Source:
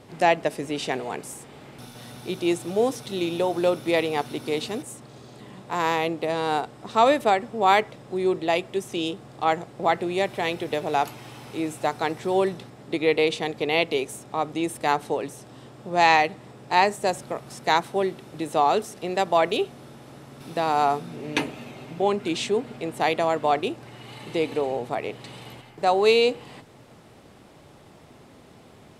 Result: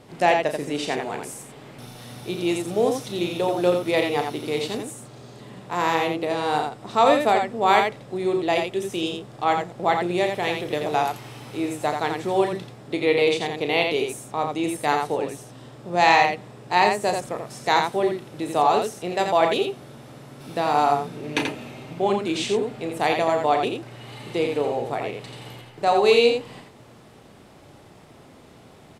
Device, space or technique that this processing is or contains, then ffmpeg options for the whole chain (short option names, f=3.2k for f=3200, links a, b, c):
slapback doubling: -filter_complex "[0:a]asplit=3[a][b][c];[b]adelay=34,volume=-8.5dB[d];[c]adelay=85,volume=-5dB[e];[a][d][e]amix=inputs=3:normalize=0"